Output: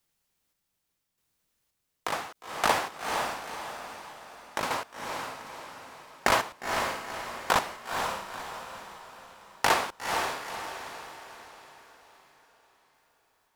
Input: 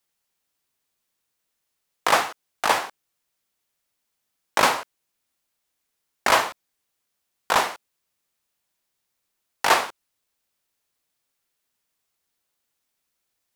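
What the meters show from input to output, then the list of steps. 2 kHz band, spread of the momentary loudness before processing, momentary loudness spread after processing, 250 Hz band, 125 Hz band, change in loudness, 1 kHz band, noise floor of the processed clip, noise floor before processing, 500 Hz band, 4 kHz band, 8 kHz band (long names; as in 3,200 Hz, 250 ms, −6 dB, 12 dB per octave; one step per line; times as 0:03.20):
−4.5 dB, 11 LU, 20 LU, −1.5 dB, +2.0 dB, −8.0 dB, −4.5 dB, −80 dBFS, −78 dBFS, −4.0 dB, −5.0 dB, −4.5 dB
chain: low-shelf EQ 220 Hz +10 dB
downward compressor 4 to 1, threshold −20 dBFS, peak gain reduction 7.5 dB
square-wave tremolo 0.85 Hz, depth 60%, duty 45%
on a send: feedback delay with all-pass diffusion 482 ms, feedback 46%, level −4 dB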